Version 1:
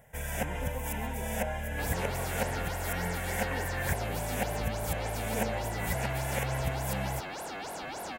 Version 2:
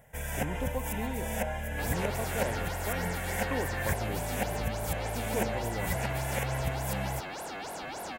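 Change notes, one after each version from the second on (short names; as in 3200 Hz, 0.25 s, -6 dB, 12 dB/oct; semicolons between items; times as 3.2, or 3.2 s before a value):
speech +7.0 dB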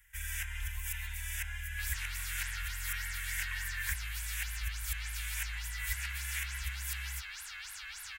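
master: add inverse Chebyshev band-stop 220–470 Hz, stop band 80 dB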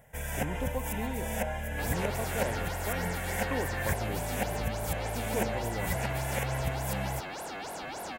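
master: remove inverse Chebyshev band-stop 220–470 Hz, stop band 80 dB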